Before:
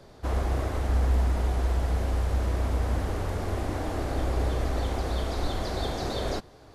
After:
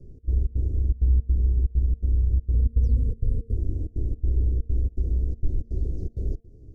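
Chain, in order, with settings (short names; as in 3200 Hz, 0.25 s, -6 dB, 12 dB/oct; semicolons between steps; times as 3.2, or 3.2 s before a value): 2.53–3.53 ripple EQ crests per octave 0.95, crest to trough 17 dB; 2.83–3.17 painted sound fall 1000–6400 Hz -37 dBFS; step gate "xx.xx.xx" 163 bpm -24 dB; compressor 1.5:1, threshold -41 dBFS, peak gain reduction 8 dB; in parallel at -9 dB: sample-rate reducer 4800 Hz, jitter 0%; on the sum: elliptic band-stop 410–6100 Hz, stop band 70 dB; RIAA curve playback; de-hum 228.3 Hz, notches 14; gain -6.5 dB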